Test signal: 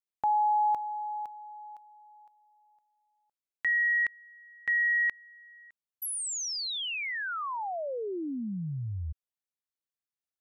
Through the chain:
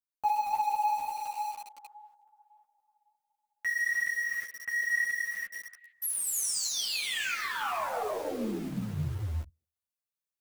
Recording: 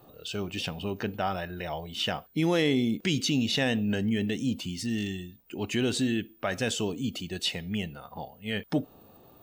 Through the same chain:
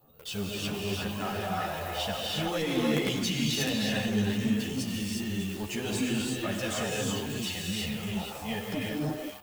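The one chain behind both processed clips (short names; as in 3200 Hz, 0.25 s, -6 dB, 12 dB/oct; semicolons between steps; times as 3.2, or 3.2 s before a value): LFO notch sine 5.4 Hz 300–4600 Hz; bell 340 Hz -6.5 dB 0.35 oct; on a send: delay with a stepping band-pass 0.15 s, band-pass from 440 Hz, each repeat 1.4 oct, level -3 dB; on the sum: non-linear reverb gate 0.38 s rising, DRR -2.5 dB; in parallel at -8 dB: companded quantiser 2-bit; on the sum: high shelf 9700 Hz +6 dB; ensemble effect; gain -4 dB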